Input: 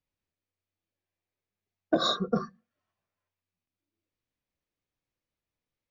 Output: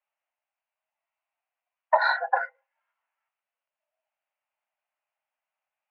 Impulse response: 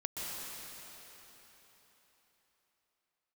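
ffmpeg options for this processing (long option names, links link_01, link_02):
-filter_complex "[0:a]asettb=1/sr,asplit=3[link_01][link_02][link_03];[link_01]atrim=end=2.014[link_04];[link_02]atrim=start=2.01:end=2.47,asetpts=PTS-STARTPTS,afade=type=in:duration=0.004:curve=qsin,afade=type=out:start_time=0.456:duration=0.004:curve=qsin,highshelf=frequency=2200:gain=11.5[link_05];[link_03]atrim=start=2.466[link_06];[link_04][link_05]acrossfade=duration=0.004:curve1=hsin:curve2=qsin[link_07];[link_07][link_06]acrossfade=duration=0.004:curve1=qsin:curve2=hsin,highpass=frequency=310:width_type=q:width=0.5412,highpass=frequency=310:width_type=q:width=1.307,lowpass=frequency=2500:width_type=q:width=0.5176,lowpass=frequency=2500:width_type=q:width=0.7071,lowpass=frequency=2500:width_type=q:width=1.932,afreqshift=310,volume=5.5dB"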